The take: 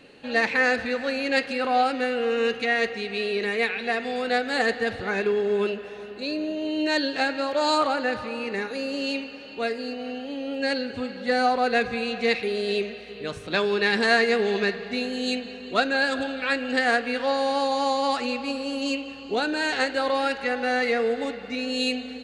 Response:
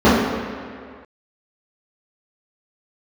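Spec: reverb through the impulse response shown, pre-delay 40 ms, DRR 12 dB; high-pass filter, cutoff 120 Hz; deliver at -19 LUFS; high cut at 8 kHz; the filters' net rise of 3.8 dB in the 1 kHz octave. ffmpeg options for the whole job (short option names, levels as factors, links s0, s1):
-filter_complex "[0:a]highpass=120,lowpass=8000,equalizer=f=1000:t=o:g=5.5,asplit=2[s0][s1];[1:a]atrim=start_sample=2205,adelay=40[s2];[s1][s2]afir=irnorm=-1:irlink=0,volume=0.00891[s3];[s0][s3]amix=inputs=2:normalize=0,volume=1.58"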